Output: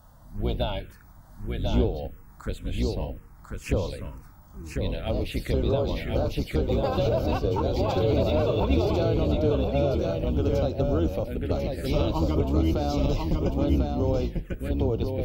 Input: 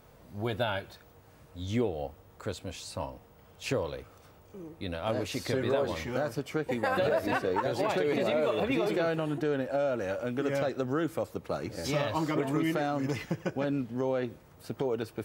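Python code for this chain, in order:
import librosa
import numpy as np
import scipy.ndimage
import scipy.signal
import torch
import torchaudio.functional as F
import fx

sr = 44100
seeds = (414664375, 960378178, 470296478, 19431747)

y = fx.octave_divider(x, sr, octaves=2, level_db=4.0)
y = y + 10.0 ** (-4.0 / 20.0) * np.pad(y, (int(1045 * sr / 1000.0), 0))[:len(y)]
y = fx.env_phaser(y, sr, low_hz=390.0, high_hz=1800.0, full_db=-24.0)
y = y * 10.0 ** (3.0 / 20.0)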